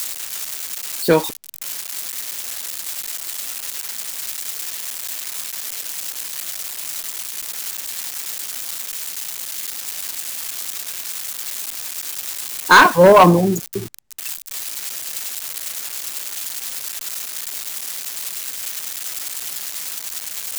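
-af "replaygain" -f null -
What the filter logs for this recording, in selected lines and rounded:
track_gain = +10.2 dB
track_peak = 0.438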